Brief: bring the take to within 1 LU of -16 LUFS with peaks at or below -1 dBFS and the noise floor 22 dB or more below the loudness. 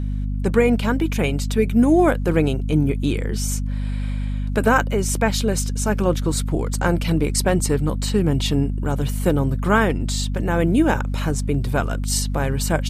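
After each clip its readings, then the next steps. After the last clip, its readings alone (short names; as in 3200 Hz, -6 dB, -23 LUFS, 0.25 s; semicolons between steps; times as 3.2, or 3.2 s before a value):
dropouts 1; longest dropout 1.3 ms; hum 50 Hz; harmonics up to 250 Hz; hum level -21 dBFS; loudness -21.0 LUFS; peak -3.5 dBFS; loudness target -16.0 LUFS
-> interpolate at 5.09, 1.3 ms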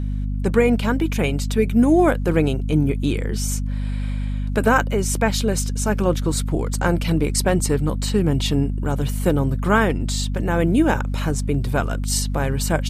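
dropouts 0; hum 50 Hz; harmonics up to 250 Hz; hum level -21 dBFS
-> de-hum 50 Hz, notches 5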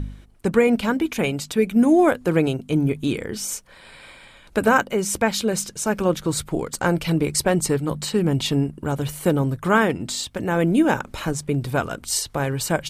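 hum none; loudness -22.0 LUFS; peak -4.0 dBFS; loudness target -16.0 LUFS
-> gain +6 dB; limiter -1 dBFS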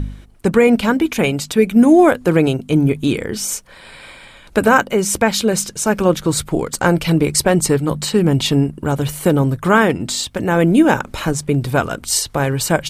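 loudness -16.0 LUFS; peak -1.0 dBFS; noise floor -42 dBFS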